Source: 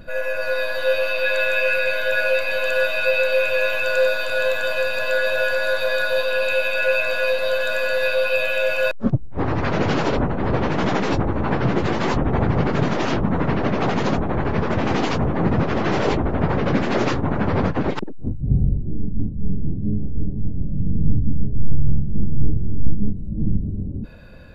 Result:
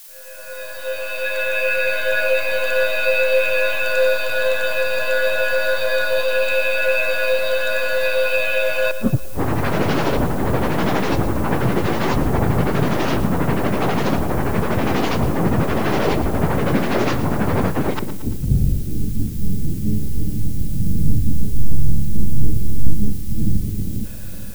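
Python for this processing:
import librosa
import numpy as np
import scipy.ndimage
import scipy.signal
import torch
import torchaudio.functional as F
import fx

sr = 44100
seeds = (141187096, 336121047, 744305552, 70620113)

y = fx.fade_in_head(x, sr, length_s=2.04)
y = fx.dmg_noise_colour(y, sr, seeds[0], colour='blue', level_db=-42.0)
y = fx.echo_split(y, sr, split_hz=380.0, low_ms=460, high_ms=114, feedback_pct=52, wet_db=-13)
y = F.gain(torch.from_numpy(y), 1.0).numpy()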